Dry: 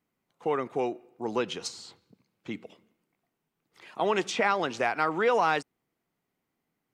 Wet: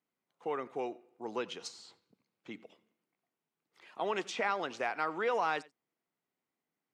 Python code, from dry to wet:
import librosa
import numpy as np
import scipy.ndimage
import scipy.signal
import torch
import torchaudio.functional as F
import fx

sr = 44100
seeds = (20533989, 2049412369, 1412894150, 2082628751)

p1 = fx.highpass(x, sr, hz=280.0, slope=6)
p2 = fx.high_shelf(p1, sr, hz=8100.0, db=-5.5)
p3 = p2 + fx.echo_single(p2, sr, ms=90, db=-22.5, dry=0)
y = F.gain(torch.from_numpy(p3), -6.5).numpy()